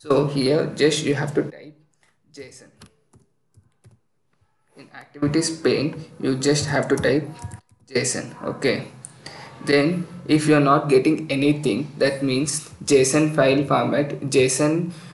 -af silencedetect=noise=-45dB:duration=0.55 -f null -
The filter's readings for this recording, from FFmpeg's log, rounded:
silence_start: 3.91
silence_end: 4.77 | silence_duration: 0.86